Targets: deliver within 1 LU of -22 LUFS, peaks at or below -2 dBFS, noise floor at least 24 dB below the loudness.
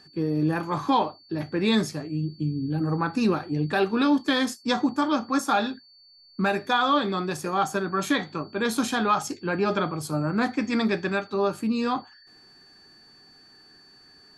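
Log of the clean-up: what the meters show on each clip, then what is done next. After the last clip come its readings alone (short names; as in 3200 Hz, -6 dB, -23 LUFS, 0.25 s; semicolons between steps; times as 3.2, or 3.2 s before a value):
steady tone 4500 Hz; tone level -52 dBFS; loudness -25.5 LUFS; peak -10.5 dBFS; loudness target -22.0 LUFS
-> notch 4500 Hz, Q 30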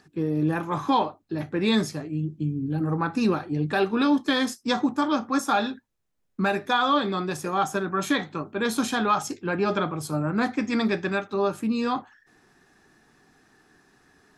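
steady tone none; loudness -25.5 LUFS; peak -10.5 dBFS; loudness target -22.0 LUFS
-> gain +3.5 dB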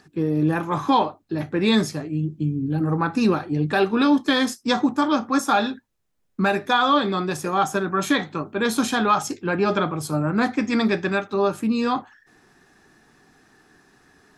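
loudness -22.0 LUFS; peak -7.0 dBFS; noise floor -63 dBFS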